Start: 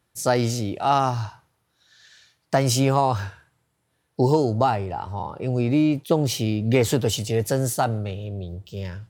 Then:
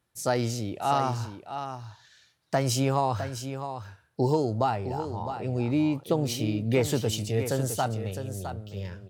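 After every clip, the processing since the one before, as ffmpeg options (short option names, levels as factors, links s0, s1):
-af "aecho=1:1:659:0.335,volume=0.531"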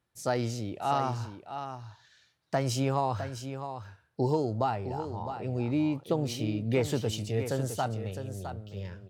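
-af "highshelf=f=7400:g=-7.5,volume=0.708"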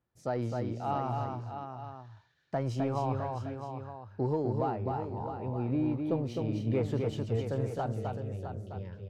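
-filter_complex "[0:a]asplit=2[s0][s1];[s1]asoftclip=type=hard:threshold=0.0422,volume=0.376[s2];[s0][s2]amix=inputs=2:normalize=0,lowpass=f=1100:p=1,aecho=1:1:259:0.631,volume=0.596"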